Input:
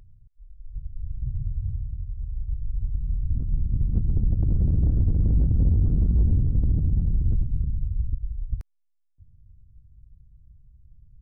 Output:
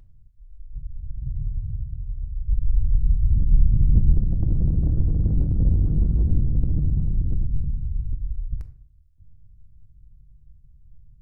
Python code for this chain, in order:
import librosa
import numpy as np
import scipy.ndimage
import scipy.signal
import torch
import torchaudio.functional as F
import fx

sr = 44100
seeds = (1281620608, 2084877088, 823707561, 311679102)

y = fx.low_shelf(x, sr, hz=170.0, db=7.0, at=(2.48, 4.13), fade=0.02)
y = fx.room_shoebox(y, sr, seeds[0], volume_m3=690.0, walls='furnished', distance_m=0.68)